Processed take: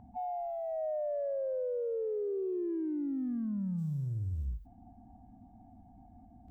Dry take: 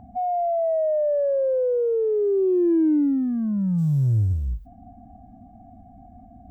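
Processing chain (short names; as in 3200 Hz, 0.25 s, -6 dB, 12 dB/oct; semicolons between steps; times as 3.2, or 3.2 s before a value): bell 670 Hz -6.5 dB 0.24 oct; limiter -22.5 dBFS, peak gain reduction 7.5 dB; harmoniser +3 st -14 dB; gain -8.5 dB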